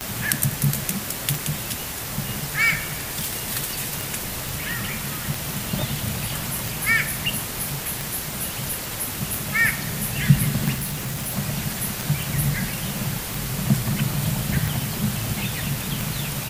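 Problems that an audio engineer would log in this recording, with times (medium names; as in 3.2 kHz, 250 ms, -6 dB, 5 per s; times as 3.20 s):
tick 45 rpm -11 dBFS
2.82–3.33 s: clipped -21 dBFS
4.49 s: pop
10.74–11.37 s: clipped -24 dBFS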